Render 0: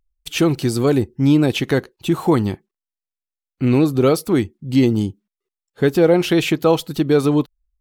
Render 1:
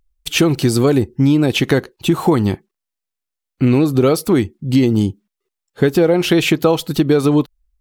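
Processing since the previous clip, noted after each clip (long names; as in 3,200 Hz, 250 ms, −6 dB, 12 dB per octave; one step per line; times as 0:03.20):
downward compressor, threshold −16 dBFS, peak gain reduction 7.5 dB
level +6.5 dB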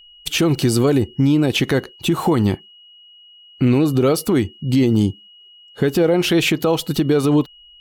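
brickwall limiter −8 dBFS, peak gain reduction 6.5 dB
steady tone 2,900 Hz −44 dBFS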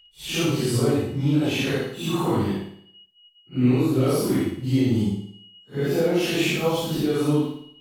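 random phases in long frames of 200 ms
flutter between parallel walls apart 9.6 metres, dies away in 0.61 s
level −6.5 dB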